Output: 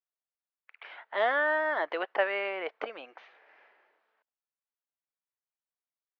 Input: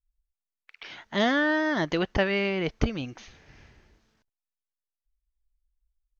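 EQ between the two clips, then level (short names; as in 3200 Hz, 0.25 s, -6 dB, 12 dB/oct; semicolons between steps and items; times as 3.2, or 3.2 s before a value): HPF 530 Hz 24 dB/oct; LPF 2200 Hz 12 dB/oct; air absorption 180 m; +1.5 dB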